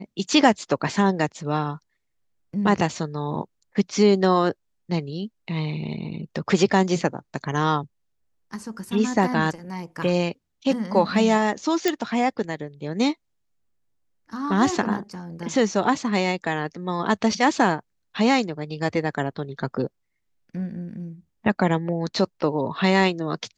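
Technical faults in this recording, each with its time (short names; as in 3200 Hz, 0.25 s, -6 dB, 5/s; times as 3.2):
11.88 pop -7 dBFS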